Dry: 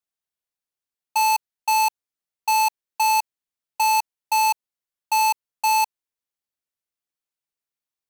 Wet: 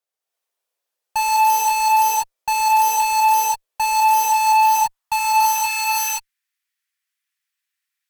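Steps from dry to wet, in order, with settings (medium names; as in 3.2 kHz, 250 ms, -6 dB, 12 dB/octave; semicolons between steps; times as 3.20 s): high-pass sweep 510 Hz -> 1.8 kHz, 3.84–6.05 s; gated-style reverb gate 360 ms rising, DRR -6.5 dB; Chebyshev shaper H 5 -24 dB, 8 -25 dB, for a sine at -11 dBFS; trim -1.5 dB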